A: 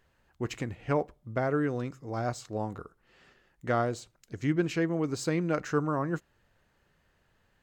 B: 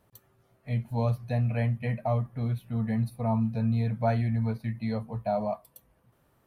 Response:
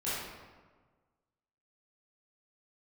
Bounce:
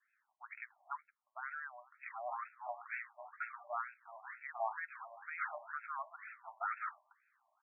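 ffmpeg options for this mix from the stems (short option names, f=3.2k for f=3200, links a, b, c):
-filter_complex "[0:a]volume=-11dB[a];[1:a]bandreject=f=197:t=h:w=4,bandreject=f=394:t=h:w=4,bandreject=f=591:t=h:w=4,bandreject=f=788:t=h:w=4,bandreject=f=985:t=h:w=4,bandreject=f=1.182k:t=h:w=4,bandreject=f=1.379k:t=h:w=4,bandreject=f=1.576k:t=h:w=4,bandreject=f=1.773k:t=h:w=4,bandreject=f=1.97k:t=h:w=4,bandreject=f=2.167k:t=h:w=4,bandreject=f=2.364k:t=h:w=4,bandreject=f=2.561k:t=h:w=4,bandreject=f=2.758k:t=h:w=4,bandreject=f=2.955k:t=h:w=4,bandreject=f=3.152k:t=h:w=4,bandreject=f=3.349k:t=h:w=4,bandreject=f=3.546k:t=h:w=4,bandreject=f=3.743k:t=h:w=4,bandreject=f=3.94k:t=h:w=4,bandreject=f=4.137k:t=h:w=4,bandreject=f=4.334k:t=h:w=4,bandreject=f=4.531k:t=h:w=4,bandreject=f=4.728k:t=h:w=4,bandreject=f=4.925k:t=h:w=4,bandreject=f=5.122k:t=h:w=4,bandreject=f=5.319k:t=h:w=4,bandreject=f=5.516k:t=h:w=4,bandreject=f=5.713k:t=h:w=4,bandreject=f=5.91k:t=h:w=4,bandreject=f=6.107k:t=h:w=4,bandreject=f=6.304k:t=h:w=4,bandreject=f=6.501k:t=h:w=4,bandreject=f=6.698k:t=h:w=4,bandreject=f=6.895k:t=h:w=4,bandreject=f=7.092k:t=h:w=4,bandreject=f=7.289k:t=h:w=4,aeval=exprs='max(val(0),0)':c=same,flanger=delay=2.2:depth=7.1:regen=-55:speed=0.73:shape=triangular,adelay=1350,volume=2dB[b];[a][b]amix=inputs=2:normalize=0,adynamicequalizer=threshold=0.001:dfrequency=2500:dqfactor=2.1:tfrequency=2500:tqfactor=2.1:attack=5:release=100:ratio=0.375:range=2.5:mode=cutabove:tftype=bell,crystalizer=i=8.5:c=0,afftfilt=real='re*between(b*sr/1024,790*pow(1900/790,0.5+0.5*sin(2*PI*2.1*pts/sr))/1.41,790*pow(1900/790,0.5+0.5*sin(2*PI*2.1*pts/sr))*1.41)':imag='im*between(b*sr/1024,790*pow(1900/790,0.5+0.5*sin(2*PI*2.1*pts/sr))/1.41,790*pow(1900/790,0.5+0.5*sin(2*PI*2.1*pts/sr))*1.41)':win_size=1024:overlap=0.75"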